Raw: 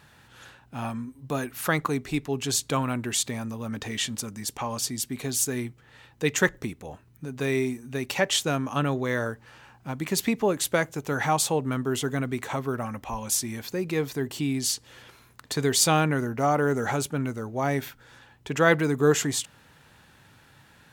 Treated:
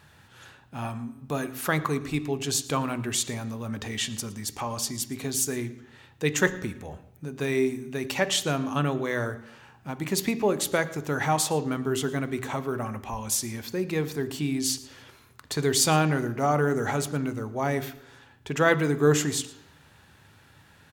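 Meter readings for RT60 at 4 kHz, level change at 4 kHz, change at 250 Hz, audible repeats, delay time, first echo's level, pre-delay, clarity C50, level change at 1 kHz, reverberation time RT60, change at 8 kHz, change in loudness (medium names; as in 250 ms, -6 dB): 0.80 s, -1.0 dB, -0.5 dB, 1, 114 ms, -21.5 dB, 3 ms, 14.5 dB, -0.5 dB, 0.80 s, -1.0 dB, -0.5 dB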